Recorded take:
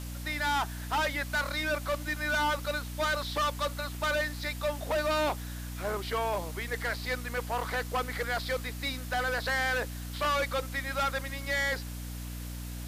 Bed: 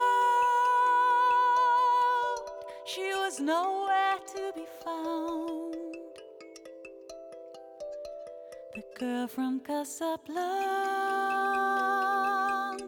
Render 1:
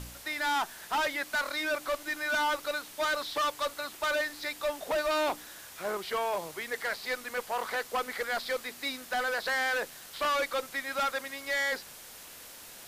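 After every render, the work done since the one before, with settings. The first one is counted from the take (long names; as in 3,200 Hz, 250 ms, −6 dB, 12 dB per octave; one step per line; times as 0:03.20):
hum removal 60 Hz, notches 5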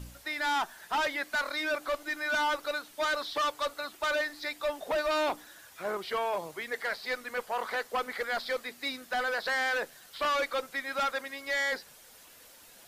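broadband denoise 8 dB, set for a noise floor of −48 dBFS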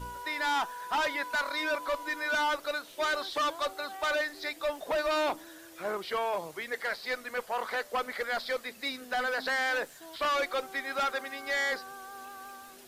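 mix in bed −17.5 dB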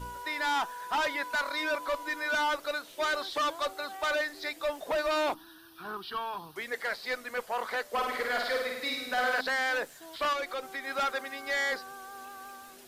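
0:05.34–0:06.56: phaser with its sweep stopped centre 2,100 Hz, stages 6
0:07.87–0:09.41: flutter between parallel walls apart 9 metres, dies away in 0.94 s
0:10.33–0:10.87: downward compressor 2 to 1, threshold −35 dBFS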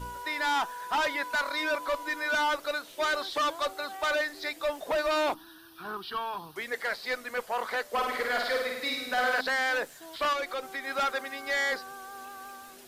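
level +1.5 dB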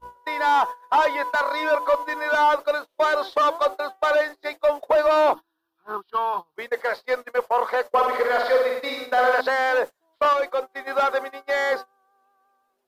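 noise gate −36 dBFS, range −30 dB
octave-band graphic EQ 500/1,000/8,000 Hz +10/+9/−4 dB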